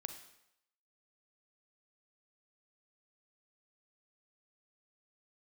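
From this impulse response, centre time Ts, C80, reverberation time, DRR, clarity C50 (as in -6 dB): 16 ms, 11.0 dB, 0.80 s, 7.0 dB, 8.5 dB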